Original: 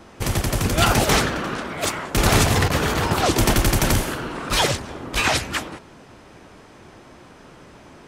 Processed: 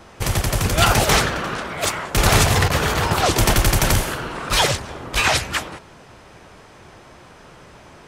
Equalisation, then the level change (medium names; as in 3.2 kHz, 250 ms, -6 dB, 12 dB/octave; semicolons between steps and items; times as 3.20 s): peaking EQ 270 Hz -6.5 dB 0.98 oct; +2.5 dB